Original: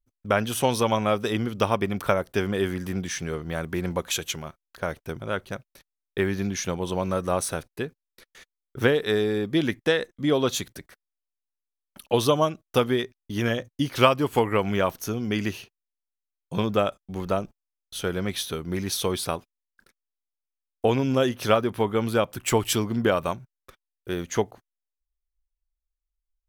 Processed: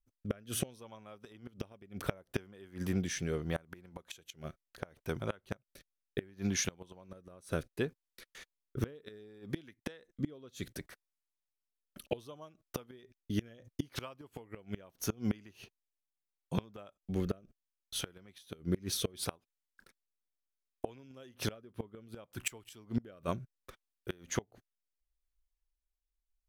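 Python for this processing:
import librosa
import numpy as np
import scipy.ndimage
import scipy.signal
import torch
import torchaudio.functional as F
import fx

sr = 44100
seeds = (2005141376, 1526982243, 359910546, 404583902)

y = fx.rotary(x, sr, hz=0.7)
y = fx.gate_flip(y, sr, shuts_db=-19.0, range_db=-27)
y = y * 10.0 ** (-1.0 / 20.0)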